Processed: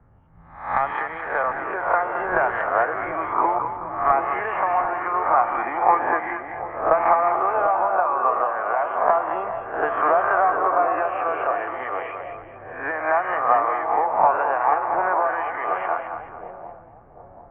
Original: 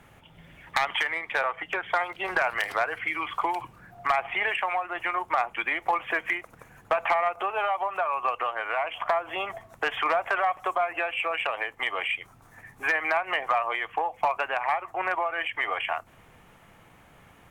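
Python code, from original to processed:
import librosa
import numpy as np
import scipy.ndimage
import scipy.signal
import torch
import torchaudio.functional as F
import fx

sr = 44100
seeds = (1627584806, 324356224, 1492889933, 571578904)

y = fx.spec_swells(x, sr, rise_s=0.73)
y = scipy.signal.sosfilt(scipy.signal.butter(4, 1400.0, 'lowpass', fs=sr, output='sos'), y)
y = fx.peak_eq(y, sr, hz=250.0, db=3.5, octaves=0.37)
y = fx.echo_split(y, sr, split_hz=730.0, low_ms=741, high_ms=215, feedback_pct=52, wet_db=-5.5)
y = fx.band_widen(y, sr, depth_pct=40)
y = y * librosa.db_to_amplitude(4.5)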